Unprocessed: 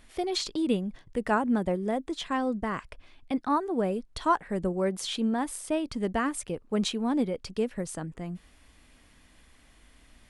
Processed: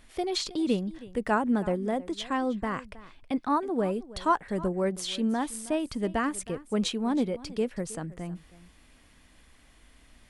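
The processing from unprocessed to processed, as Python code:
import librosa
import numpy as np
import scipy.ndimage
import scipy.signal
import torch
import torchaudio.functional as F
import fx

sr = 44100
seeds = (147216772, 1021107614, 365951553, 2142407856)

y = x + 10.0 ** (-18.5 / 20.0) * np.pad(x, (int(319 * sr / 1000.0), 0))[:len(x)]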